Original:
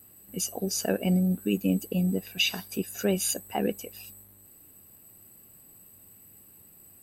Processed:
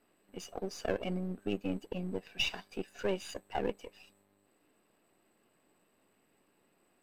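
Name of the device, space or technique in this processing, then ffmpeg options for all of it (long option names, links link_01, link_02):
crystal radio: -af "highpass=310,lowpass=3000,aeval=exprs='if(lt(val(0),0),0.447*val(0),val(0))':channel_layout=same,volume=-1.5dB"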